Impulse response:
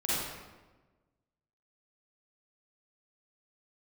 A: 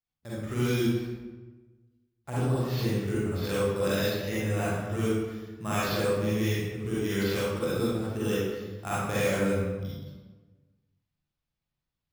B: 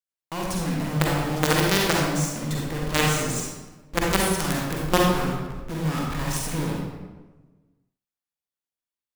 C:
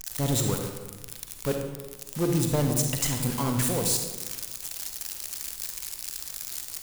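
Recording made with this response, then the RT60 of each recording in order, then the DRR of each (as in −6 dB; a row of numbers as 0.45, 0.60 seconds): A; 1.2, 1.2, 1.2 seconds; −9.5, −2.5, 3.5 decibels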